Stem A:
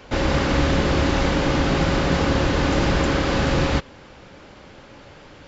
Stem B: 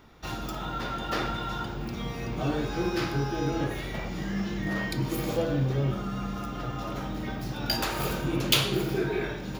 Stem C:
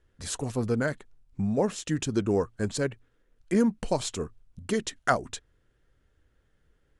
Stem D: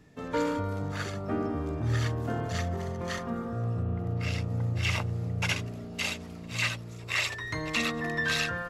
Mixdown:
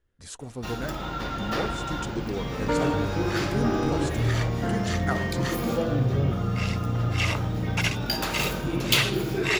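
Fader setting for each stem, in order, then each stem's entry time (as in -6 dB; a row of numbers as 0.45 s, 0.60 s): -19.0 dB, +0.5 dB, -7.0 dB, +3.0 dB; 0.70 s, 0.40 s, 0.00 s, 2.35 s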